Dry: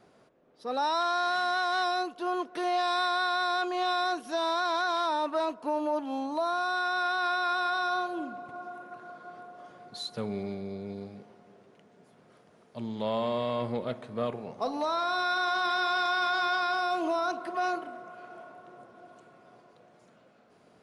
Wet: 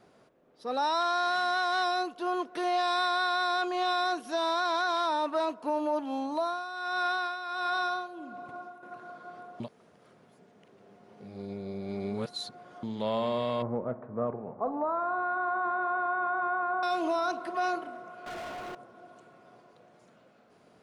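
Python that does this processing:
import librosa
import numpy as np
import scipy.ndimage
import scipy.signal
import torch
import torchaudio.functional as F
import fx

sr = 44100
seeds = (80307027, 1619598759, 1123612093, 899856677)

y = fx.highpass(x, sr, hz=80.0, slope=12, at=(3.03, 5.7))
y = fx.tremolo(y, sr, hz=1.4, depth=0.66, at=(6.35, 8.83))
y = fx.lowpass(y, sr, hz=1400.0, slope=24, at=(13.62, 16.83))
y = fx.leveller(y, sr, passes=5, at=(18.26, 18.75))
y = fx.edit(y, sr, fx.reverse_span(start_s=9.6, length_s=3.23), tone=tone)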